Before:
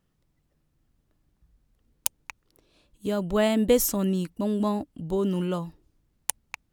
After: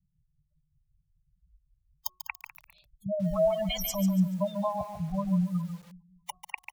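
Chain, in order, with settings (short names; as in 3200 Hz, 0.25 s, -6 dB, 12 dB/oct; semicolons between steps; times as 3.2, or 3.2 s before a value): Chebyshev band-stop 190–590 Hz, order 5; in parallel at -3 dB: compressor 12:1, threshold -41 dBFS, peak gain reduction 22.5 dB; on the sum: high shelf 2500 Hz +6.5 dB; soft clip -11.5 dBFS, distortion -10 dB; feedback echo 0.2 s, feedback 46%, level -16.5 dB; sample leveller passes 1; bell 9200 Hz -10.5 dB 0.93 oct; de-hum 366.2 Hz, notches 3; harmonic tremolo 5.2 Hz, depth 50%, crossover 2400 Hz; spectral gate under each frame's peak -10 dB strong; lo-fi delay 0.143 s, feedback 35%, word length 8-bit, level -8 dB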